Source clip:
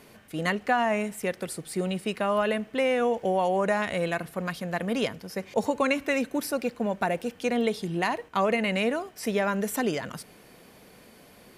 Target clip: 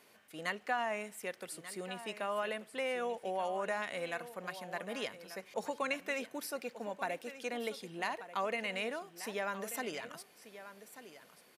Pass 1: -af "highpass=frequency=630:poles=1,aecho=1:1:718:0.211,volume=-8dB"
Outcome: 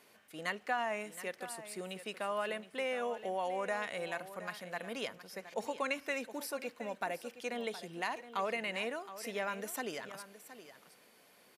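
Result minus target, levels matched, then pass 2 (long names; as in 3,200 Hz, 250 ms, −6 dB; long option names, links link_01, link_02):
echo 468 ms early
-af "highpass=frequency=630:poles=1,aecho=1:1:1186:0.211,volume=-8dB"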